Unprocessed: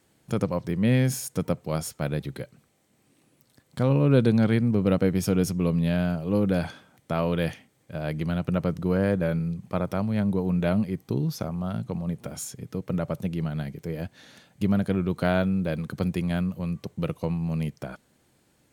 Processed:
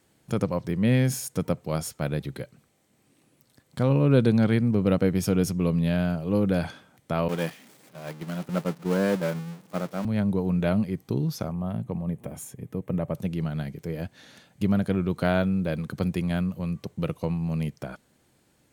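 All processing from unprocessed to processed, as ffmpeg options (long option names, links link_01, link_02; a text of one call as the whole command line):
ffmpeg -i in.wav -filter_complex "[0:a]asettb=1/sr,asplit=3[link_01][link_02][link_03];[link_01]atrim=end=7.284[link_04];[link_02]atrim=start=7.28:end=10.05,asetpts=PTS-STARTPTS,afade=type=in:duration=0.004:curve=qsin,afade=type=out:start_time=2.766:duration=0.004:curve=qsin,aeval=exprs='val(0)+0.5*0.0501*sgn(val(0))':channel_layout=same,highpass=frequency=160:width=0.5412,highpass=frequency=160:width=1.3066,agate=range=-33dB:threshold=-20dB:ratio=3:release=100:detection=peak[link_05];[link_03]atrim=start=10.046[link_06];[link_04][link_05]acrossfade=duration=0.004:curve1=hsin:curve2=qsin[link_07];[link_07][link_06]acrossfade=duration=0.004:curve1=qsin:curve2=hsin,asettb=1/sr,asplit=3[link_08][link_09][link_10];[link_08]atrim=end=11.524[link_11];[link_09]atrim=start=11.52:end=13.15,asetpts=PTS-STARTPTS,afade=type=in:duration=0.004:curve=qsin,afade=type=out:start_time=1.626:duration=0.004:curve=qsin,equalizer=frequency=4900:width=1.1:gain=-13.5,bandreject=frequency=1400:width=5.8[link_12];[link_10]atrim=start=13.146[link_13];[link_11][link_12]acrossfade=duration=0.004:curve1=hsin:curve2=qsin[link_14];[link_14][link_13]acrossfade=duration=0.004:curve1=qsin:curve2=hsin" out.wav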